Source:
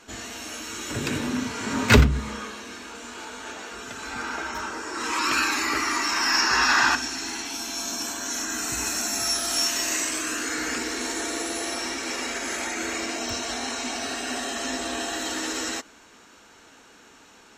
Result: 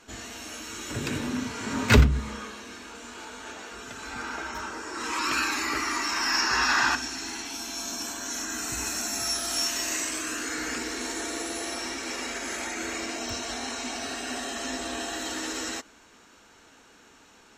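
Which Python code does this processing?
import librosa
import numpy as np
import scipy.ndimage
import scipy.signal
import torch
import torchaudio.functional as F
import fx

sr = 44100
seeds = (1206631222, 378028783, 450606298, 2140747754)

y = fx.low_shelf(x, sr, hz=100.0, db=4.5)
y = y * librosa.db_to_amplitude(-3.5)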